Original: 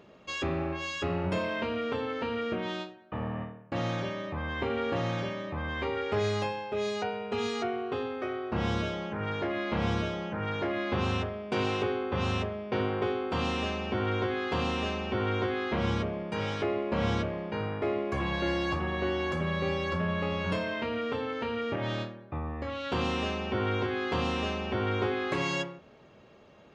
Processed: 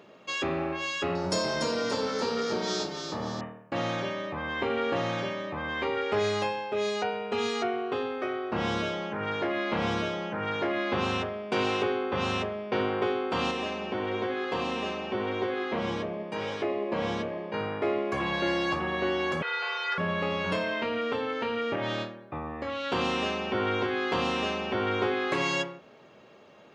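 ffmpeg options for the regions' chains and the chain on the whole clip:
ffmpeg -i in.wav -filter_complex "[0:a]asettb=1/sr,asplit=3[link_01][link_02][link_03];[link_01]atrim=end=1.154[link_04];[link_02]atrim=start=1.15:end=3.41,asetpts=PTS-STARTPTS,afade=type=in:duration=0.004:curve=qsin,afade=type=out:start_time=2.256:duration=0.004:curve=qsin,highshelf=frequency=3800:width_type=q:width=3:gain=12,asplit=7[link_05][link_06][link_07][link_08][link_09][link_10][link_11];[link_06]adelay=289,afreqshift=-33,volume=-6dB[link_12];[link_07]adelay=578,afreqshift=-66,volume=-12dB[link_13];[link_08]adelay=867,afreqshift=-99,volume=-18dB[link_14];[link_09]adelay=1156,afreqshift=-132,volume=-24.1dB[link_15];[link_10]adelay=1445,afreqshift=-165,volume=-30.1dB[link_16];[link_11]adelay=1734,afreqshift=-198,volume=-36.1dB[link_17];[link_05][link_12][link_13][link_14][link_15][link_16][link_17]amix=inputs=7:normalize=0,atrim=end_sample=99666[link_18];[link_03]atrim=start=3.406[link_19];[link_04][link_18]acrossfade=duration=0.004:curve1=hsin:curve2=qsin[link_20];[link_20][link_19]acrossfade=duration=0.004:curve1=qsin:curve2=hsin,asettb=1/sr,asplit=3[link_21][link_22][link_23];[link_21]atrim=end=13.514[link_24];[link_22]atrim=start=13.51:end=17.54,asetpts=PTS-STARTPTS,afade=type=in:duration=0.004:curve=qsin,afade=type=out:start_time=4.026:duration=0.004:curve=qsin,equalizer=frequency=460:width=0.41:gain=3,bandreject=frequency=1400:width=16,flanger=delay=1.7:depth=5:regen=77:speed=1:shape=triangular[link_25];[link_23]atrim=start=17.536[link_26];[link_24][link_25]acrossfade=duration=0.004:curve1=hsin:curve2=qsin[link_27];[link_27][link_26]acrossfade=duration=0.004:curve1=qsin:curve2=hsin,asettb=1/sr,asplit=3[link_28][link_29][link_30];[link_28]atrim=end=19.424[link_31];[link_29]atrim=start=19.42:end=19.98,asetpts=PTS-STARTPTS,afade=type=in:duration=0.004:curve=qsin,afade=type=out:start_time=0.556:duration=0.004:curve=qsin,lowpass=4500,lowshelf=frequency=630:width_type=q:width=1.5:gain=-13.5,afreqshift=310[link_32];[link_30]atrim=start=19.976[link_33];[link_31][link_32]acrossfade=duration=0.004:curve1=hsin:curve2=qsin[link_34];[link_34][link_33]acrossfade=duration=0.004:curve1=qsin:curve2=hsin,highpass=83,lowshelf=frequency=140:gain=-12,volume=3.5dB" out.wav

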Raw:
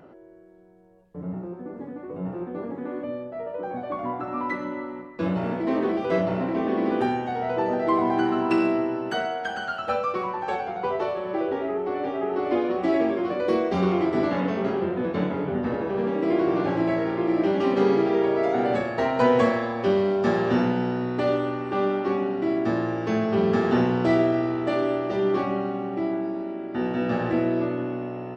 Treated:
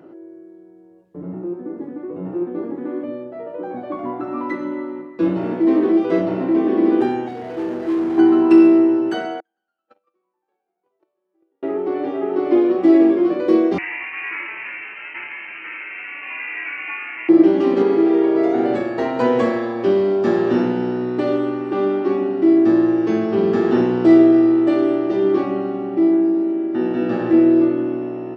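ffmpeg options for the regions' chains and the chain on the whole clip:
ffmpeg -i in.wav -filter_complex "[0:a]asettb=1/sr,asplit=3[link_01][link_02][link_03];[link_01]atrim=end=7.284[link_04];[link_02]atrim=start=7.28:end=8.18,asetpts=PTS-STARTPTS,afade=type=in:duration=0.004:curve=qsin,afade=type=out:start_time=0.896:duration=0.004:curve=qsin,equalizer=frequency=1200:width=1.2:gain=-11.5,volume=28.5dB,asoftclip=hard,volume=-28.5dB[link_05];[link_03]atrim=start=8.176[link_06];[link_04][link_05]acrossfade=duration=0.004:curve1=hsin:curve2=qsin[link_07];[link_07][link_06]acrossfade=duration=0.004:curve1=qsin:curve2=hsin,asettb=1/sr,asplit=3[link_08][link_09][link_10];[link_08]atrim=end=9.404[link_11];[link_09]atrim=start=9.4:end=11.63,asetpts=PTS-STARTPTS,afade=type=in:duration=0.004:curve=qsin,afade=type=out:start_time=2.226:duration=0.004:curve=qsin,highpass=200,agate=range=-50dB:threshold=-20dB:ratio=16:release=100:detection=peak[link_12];[link_10]atrim=start=11.626[link_13];[link_11][link_12]acrossfade=duration=0.004:curve1=hsin:curve2=qsin[link_14];[link_14][link_13]acrossfade=duration=0.004:curve1=qsin:curve2=hsin,asettb=1/sr,asplit=3[link_15][link_16][link_17];[link_15]atrim=end=13.784[link_18];[link_16]atrim=start=13.78:end=17.29,asetpts=PTS-STARTPTS,afade=type=in:duration=0.004:curve=qsin,afade=type=out:start_time=3.506:duration=0.004:curve=qsin,highpass=frequency=960:width_type=q:width=1.9,acrusher=bits=7:dc=4:mix=0:aa=0.000001,lowpass=frequency=2600:width_type=q:width=0.5098,lowpass=frequency=2600:width_type=q:width=0.6013,lowpass=frequency=2600:width_type=q:width=0.9,lowpass=frequency=2600:width_type=q:width=2.563,afreqshift=-3100[link_19];[link_17]atrim=start=17.286[link_20];[link_18][link_19]acrossfade=duration=0.004:curve1=hsin:curve2=qsin[link_21];[link_21][link_20]acrossfade=duration=0.004:curve1=qsin:curve2=hsin,asettb=1/sr,asplit=3[link_22][link_23][link_24];[link_22]atrim=end=17.824[link_25];[link_23]atrim=start=17.82:end=18.35,asetpts=PTS-STARTPTS,afade=type=in:duration=0.004:curve=qsin,afade=type=out:start_time=0.526:duration=0.004:curve=qsin,highpass=frequency=270:poles=1,acrossover=split=3700[link_26][link_27];[link_27]acompressor=threshold=-56dB:ratio=4:attack=1:release=60[link_28];[link_26][link_28]amix=inputs=2:normalize=0[link_29];[link_24]atrim=start=18.346[link_30];[link_25][link_29]acrossfade=duration=0.004:curve1=hsin:curve2=qsin[link_31];[link_31][link_30]acrossfade=duration=0.004:curve1=qsin:curve2=hsin,highpass=99,equalizer=frequency=330:width=3.3:gain=13.5" out.wav

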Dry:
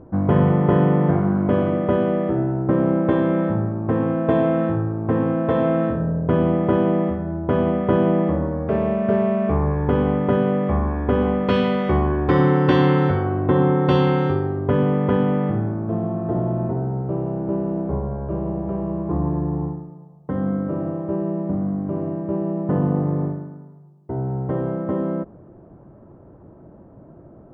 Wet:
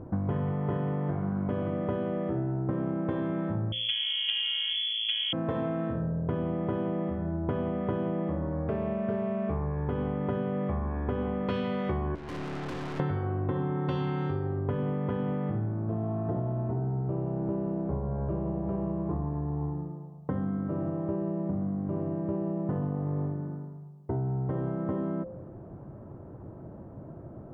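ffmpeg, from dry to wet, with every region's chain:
ffmpeg -i in.wav -filter_complex "[0:a]asettb=1/sr,asplit=3[link_01][link_02][link_03];[link_01]atrim=end=3.724[link_04];[link_02]atrim=start=3.72:end=5.33,asetpts=PTS-STARTPTS,afade=type=in:duration=0.004:curve=qsin,afade=type=out:start_time=1.606:duration=0.004:curve=qsin,lowpass=frequency=3000:width_type=q:width=0.5098,lowpass=frequency=3000:width_type=q:width=0.6013,lowpass=frequency=3000:width_type=q:width=0.9,lowpass=frequency=3000:width_type=q:width=2.563,afreqshift=-3500,equalizer=frequency=580:width_type=o:width=0.43:gain=-11.5[link_05];[link_03]atrim=start=5.326[link_06];[link_04][link_05]acrossfade=duration=0.004:curve1=hsin:curve2=qsin[link_07];[link_07][link_06]acrossfade=duration=0.004:curve1=qsin:curve2=hsin,asettb=1/sr,asplit=3[link_08][link_09][link_10];[link_08]atrim=end=12.154[link_11];[link_09]atrim=start=12.15:end=13,asetpts=PTS-STARTPTS,afade=type=in:duration=0.004:curve=qsin,afade=type=out:start_time=0.846:duration=0.004:curve=qsin,equalizer=frequency=230:width_type=o:width=1.2:gain=7,acrossover=split=440|1500[link_12][link_13][link_14];[link_12]acompressor=threshold=-25dB:ratio=4[link_15];[link_13]acompressor=threshold=-25dB:ratio=4[link_16];[link_14]acompressor=threshold=-45dB:ratio=4[link_17];[link_15][link_16][link_17]amix=inputs=3:normalize=0,aeval=exprs='(tanh(56.2*val(0)+0.4)-tanh(0.4))/56.2':channel_layout=same[link_18];[link_10]atrim=start=12.996[link_19];[link_11][link_18]acrossfade=duration=0.004:curve1=hsin:curve2=qsin[link_20];[link_20][link_19]acrossfade=duration=0.004:curve1=qsin:curve2=hsin,equalizer=frequency=110:width_type=o:width=0.74:gain=5.5,bandreject=frequency=58.08:width_type=h:width=4,bandreject=frequency=116.16:width_type=h:width=4,bandreject=frequency=174.24:width_type=h:width=4,bandreject=frequency=232.32:width_type=h:width=4,bandreject=frequency=290.4:width_type=h:width=4,bandreject=frequency=348.48:width_type=h:width=4,bandreject=frequency=406.56:width_type=h:width=4,bandreject=frequency=464.64:width_type=h:width=4,bandreject=frequency=522.72:width_type=h:width=4,bandreject=frequency=580.8:width_type=h:width=4,bandreject=frequency=638.88:width_type=h:width=4,acompressor=threshold=-28dB:ratio=6" out.wav

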